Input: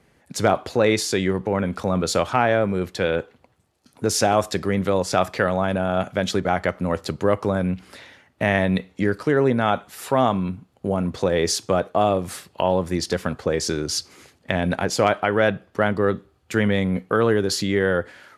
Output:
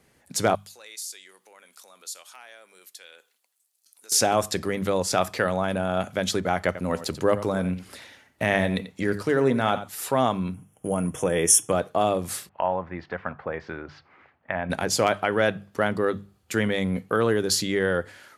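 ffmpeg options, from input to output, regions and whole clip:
-filter_complex "[0:a]asettb=1/sr,asplit=3[s0][s1][s2];[s0]atrim=end=0.554[s3];[s1]atrim=start=0.55:end=4.12,asetpts=PTS-STARTPTS,afade=t=in:d=0.004:c=qsin,afade=t=out:st=3.566:d=0.004:c=qsin,highpass=270,aderivative,acompressor=threshold=0.00224:ratio=1.5:attack=3.2:release=140:knee=1:detection=peak[s4];[s2]atrim=start=4.116[s5];[s3][s4]acrossfade=d=0.004:c1=hsin:c2=qsin[s6];[s6][s5]acrossfade=d=0.004:c1=qsin:c2=hsin,asettb=1/sr,asplit=3[s7][s8][s9];[s7]atrim=end=6.664[s10];[s8]atrim=start=6.66:end=9.88,asetpts=PTS-STARTPTS,afade=t=in:d=0.004:c=qsin,afade=t=out:st=3.216:d=0.004:c=qsin,aphaser=in_gain=1:out_gain=1:delay=4.6:decay=0.21:speed=1.6:type=sinusoidal,aecho=1:1:88:0.211,atrim=end_sample=142002[s11];[s9]atrim=start=9.876[s12];[s10][s11]acrossfade=d=0.004:c1=hsin:c2=qsin[s13];[s13][s12]acrossfade=d=0.004:c1=qsin:c2=hsin,asettb=1/sr,asplit=3[s14][s15][s16];[s14]atrim=end=10.544[s17];[s15]atrim=start=10.54:end=11.72,asetpts=PTS-STARTPTS,afade=t=in:d=0.004:c=qsin,afade=t=out:st=1.176:d=0.004:c=qsin,asuperstop=centerf=4300:order=12:qfactor=2.2,equalizer=f=10000:w=3:g=15,aecho=1:1:6.5:0.32,atrim=end_sample=52038[s18];[s16]atrim=start=11.716[s19];[s17][s18]acrossfade=d=0.004:c1=hsin:c2=qsin[s20];[s20][s19]acrossfade=d=0.004:c1=qsin:c2=hsin,asettb=1/sr,asplit=3[s21][s22][s23];[s21]atrim=end=12.494[s24];[s22]atrim=start=12.49:end=14.7,asetpts=PTS-STARTPTS,afade=t=in:d=0.004:c=qsin,afade=t=out:st=2.206:d=0.004:c=qsin,lowpass=f=2100:w=0.5412,lowpass=f=2100:w=1.3066,lowshelf=f=560:t=q:w=1.5:g=-7[s25];[s23]atrim=start=14.696[s26];[s24][s25]acrossfade=d=0.004:c1=hsin:c2=qsin[s27];[s27][s26]acrossfade=d=0.004:c1=qsin:c2=hsin,highshelf=f=5600:g=10.5,bandreject=f=50:t=h:w=6,bandreject=f=100:t=h:w=6,bandreject=f=150:t=h:w=6,bandreject=f=200:t=h:w=6,volume=0.668"

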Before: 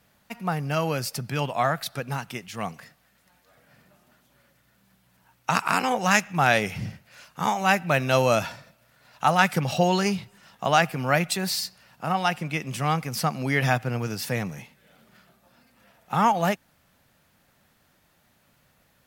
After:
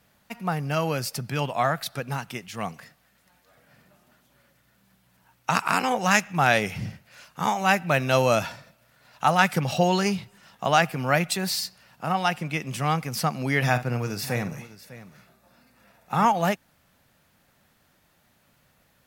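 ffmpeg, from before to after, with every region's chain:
-filter_complex "[0:a]asettb=1/sr,asplit=3[s0][s1][s2];[s0]atrim=end=13.634[s3];[s1]atrim=start=13.63:end=16.26,asetpts=PTS-STARTPTS,afade=t=in:d=0.004:c=qsin,afade=t=out:st=2.626:d=0.004:c=qsin,bandreject=f=3100:w=9.2,aecho=1:1:49|602:0.266|0.15,atrim=end_sample=115983[s4];[s2]atrim=start=16.256[s5];[s3][s4]acrossfade=d=0.004:c1=hsin:c2=qsin[s6];[s6][s5]acrossfade=d=0.004:c1=qsin:c2=hsin"

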